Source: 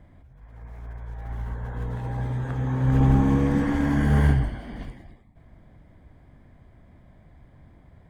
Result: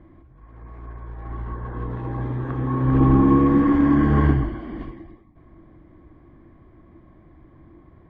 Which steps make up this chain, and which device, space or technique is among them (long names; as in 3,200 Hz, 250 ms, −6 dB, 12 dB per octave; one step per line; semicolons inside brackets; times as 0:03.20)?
inside a cardboard box (low-pass filter 2,900 Hz 12 dB per octave; hollow resonant body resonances 330/1,100 Hz, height 17 dB, ringing for 65 ms)